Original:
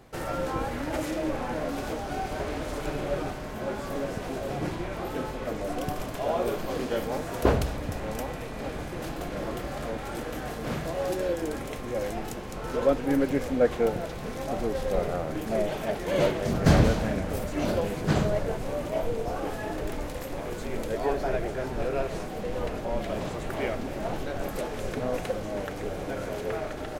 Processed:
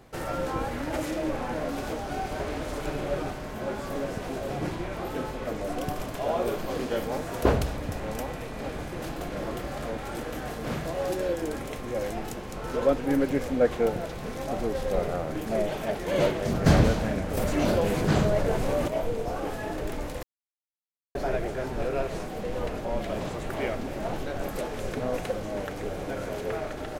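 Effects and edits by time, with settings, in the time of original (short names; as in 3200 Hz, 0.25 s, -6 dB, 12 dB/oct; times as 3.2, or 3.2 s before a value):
17.37–18.88 fast leveller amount 50%
20.23–21.15 mute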